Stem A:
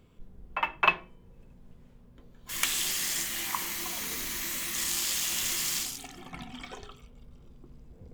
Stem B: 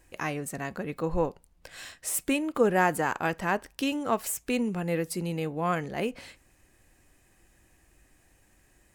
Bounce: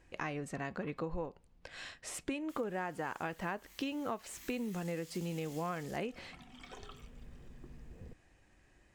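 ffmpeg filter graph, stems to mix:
-filter_complex "[0:a]acompressor=threshold=-38dB:ratio=5,volume=-1dB,afade=t=in:st=4.19:d=0.32:silence=0.473151,afade=t=in:st=6.56:d=0.47:silence=0.298538[a];[1:a]lowpass=5k,volume=-2.5dB[b];[a][b]amix=inputs=2:normalize=0,acompressor=threshold=-34dB:ratio=10"

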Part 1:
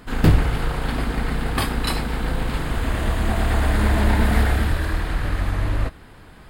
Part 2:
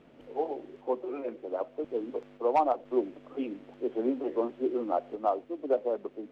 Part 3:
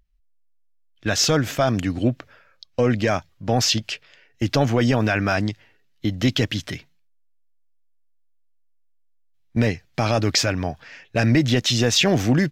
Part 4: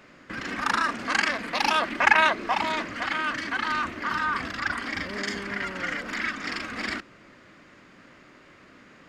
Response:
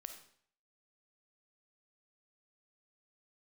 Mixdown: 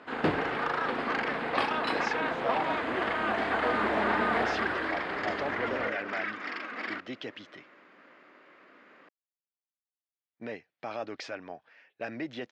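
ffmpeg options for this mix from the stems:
-filter_complex "[0:a]volume=-5dB[a];[1:a]volume=-11.5dB[b];[2:a]adelay=850,volume=-16dB[c];[3:a]acompressor=threshold=-26dB:ratio=6,volume=-4.5dB[d];[a][b][c][d]amix=inputs=4:normalize=0,highpass=330,lowpass=3.1k,equalizer=f=690:w=0.42:g=3"

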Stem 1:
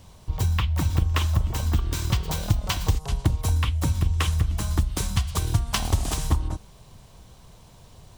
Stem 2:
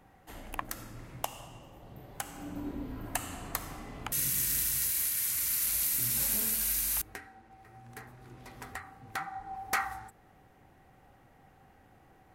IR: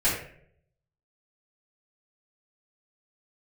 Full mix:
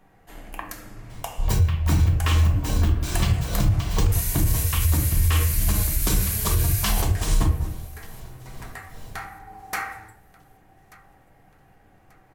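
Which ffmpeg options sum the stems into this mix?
-filter_complex "[0:a]tremolo=f=2.4:d=0.84,adelay=1100,volume=0.5dB,asplit=3[a][b][c];[b]volume=-9dB[d];[c]volume=-23.5dB[e];[1:a]volume=-2dB,asplit=3[f][g][h];[g]volume=-10.5dB[i];[h]volume=-19dB[j];[2:a]atrim=start_sample=2205[k];[d][i]amix=inputs=2:normalize=0[l];[l][k]afir=irnorm=-1:irlink=0[m];[e][j]amix=inputs=2:normalize=0,aecho=0:1:1186|2372|3558|4744|5930:1|0.34|0.116|0.0393|0.0134[n];[a][f][m][n]amix=inputs=4:normalize=0,alimiter=limit=-11dB:level=0:latency=1:release=43"

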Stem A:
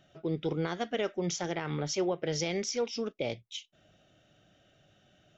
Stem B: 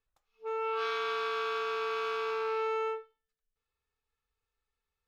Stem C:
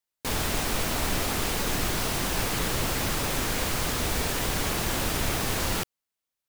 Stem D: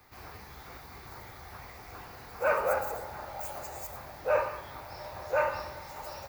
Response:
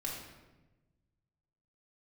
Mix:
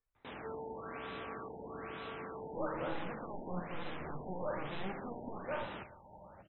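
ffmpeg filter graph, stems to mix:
-filter_complex "[0:a]equalizer=f=190:w=4.5:g=11,aeval=exprs='0.141*(cos(1*acos(clip(val(0)/0.141,-1,1)))-cos(1*PI/2))+0.0562*(cos(7*acos(clip(val(0)/0.141,-1,1)))-cos(7*PI/2))':c=same,adelay=2300,volume=-5.5dB,asplit=2[a][b];[b]volume=-15.5dB[c];[1:a]volume=-5dB[d];[2:a]highpass=180,volume=-15dB[e];[3:a]adelay=150,volume=-12.5dB[f];[a][d]amix=inputs=2:normalize=0,alimiter=level_in=14dB:limit=-24dB:level=0:latency=1:release=223,volume=-14dB,volume=0dB[g];[4:a]atrim=start_sample=2205[h];[c][h]afir=irnorm=-1:irlink=0[i];[e][f][g][i]amix=inputs=4:normalize=0,highshelf=f=5.6k:g=-9.5,afftfilt=real='re*lt(b*sr/1024,940*pow(4100/940,0.5+0.5*sin(2*PI*1.1*pts/sr)))':imag='im*lt(b*sr/1024,940*pow(4100/940,0.5+0.5*sin(2*PI*1.1*pts/sr)))':win_size=1024:overlap=0.75"

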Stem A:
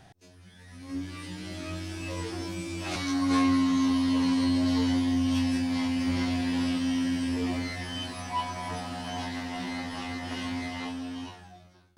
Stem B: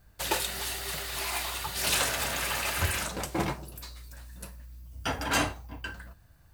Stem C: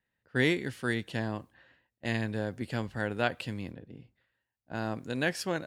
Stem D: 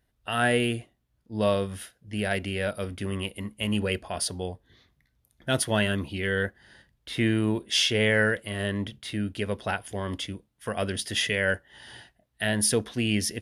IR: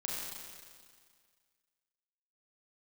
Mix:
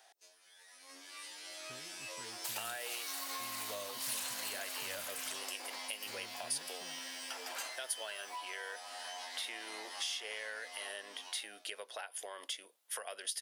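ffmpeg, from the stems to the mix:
-filter_complex "[0:a]volume=-8dB[a];[1:a]acompressor=threshold=-42dB:ratio=1.5,adelay=2250,volume=-7dB[b];[2:a]acompressor=threshold=-34dB:ratio=6,flanger=delay=6.6:depth=7.3:regen=-47:speed=0.17:shape=triangular,adelay=1350,volume=-17.5dB[c];[3:a]acompressor=threshold=-40dB:ratio=2.5,adelay=2300,volume=2dB[d];[a][b][d]amix=inputs=3:normalize=0,highpass=f=520:w=0.5412,highpass=f=520:w=1.3066,acompressor=threshold=-44dB:ratio=3,volume=0dB[e];[c][e]amix=inputs=2:normalize=0,highshelf=f=4.2k:g=11"

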